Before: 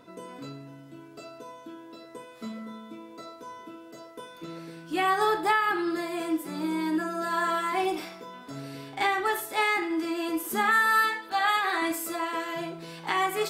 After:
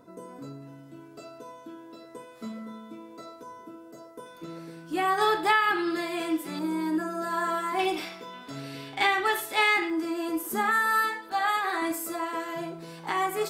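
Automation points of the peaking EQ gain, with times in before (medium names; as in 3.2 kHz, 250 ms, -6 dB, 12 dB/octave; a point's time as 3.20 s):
peaking EQ 3 kHz 1.5 oct
-12.5 dB
from 0.62 s -4 dB
from 3.43 s -11 dB
from 4.26 s -4.5 dB
from 5.18 s +5 dB
from 6.59 s -6 dB
from 7.79 s +5.5 dB
from 9.90 s -5.5 dB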